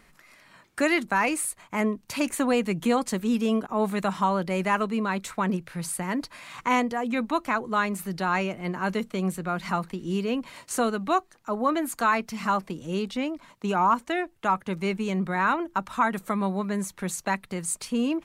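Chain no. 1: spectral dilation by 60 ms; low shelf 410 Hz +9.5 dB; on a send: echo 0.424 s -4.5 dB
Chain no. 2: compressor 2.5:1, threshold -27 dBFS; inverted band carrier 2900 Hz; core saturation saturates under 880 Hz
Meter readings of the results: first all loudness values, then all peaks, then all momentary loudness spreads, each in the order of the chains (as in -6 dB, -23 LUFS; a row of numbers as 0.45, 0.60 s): -18.5, -29.0 LUFS; -2.5, -14.5 dBFS; 5, 5 LU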